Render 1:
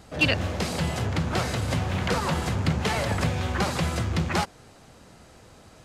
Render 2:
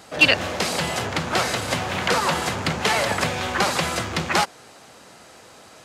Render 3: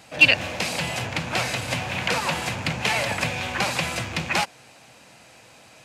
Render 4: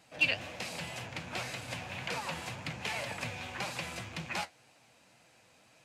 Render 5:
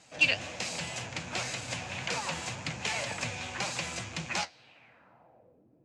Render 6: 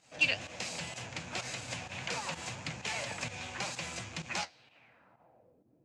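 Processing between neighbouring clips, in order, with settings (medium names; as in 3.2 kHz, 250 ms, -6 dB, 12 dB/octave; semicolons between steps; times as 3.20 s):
high-pass 540 Hz 6 dB/octave; trim +8 dB
graphic EQ with 31 bands 125 Hz +7 dB, 400 Hz -7 dB, 1.25 kHz -5 dB, 2.5 kHz +8 dB; trim -3.5 dB
flange 1.9 Hz, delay 5.5 ms, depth 7.1 ms, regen +61%; trim -9 dB
low-pass sweep 7.1 kHz -> 340 Hz, 4.36–5.65 s; trim +2.5 dB
volume shaper 128 bpm, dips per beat 1, -11 dB, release 90 ms; trim -3.5 dB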